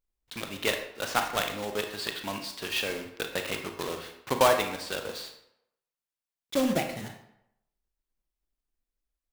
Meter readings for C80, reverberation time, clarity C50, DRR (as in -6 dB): 10.0 dB, 0.80 s, 7.5 dB, 4.5 dB